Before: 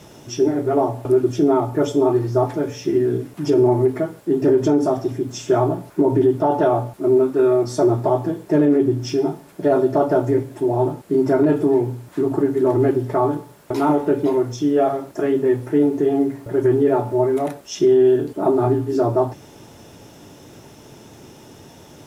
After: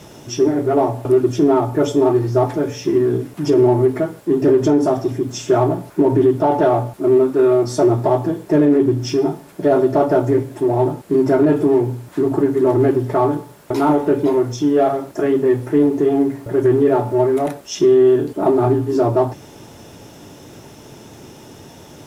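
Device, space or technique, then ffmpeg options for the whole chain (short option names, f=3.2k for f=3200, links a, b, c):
parallel distortion: -filter_complex "[0:a]asplit=2[a][b];[b]asoftclip=type=hard:threshold=-22dB,volume=-12dB[c];[a][c]amix=inputs=2:normalize=0,volume=1.5dB"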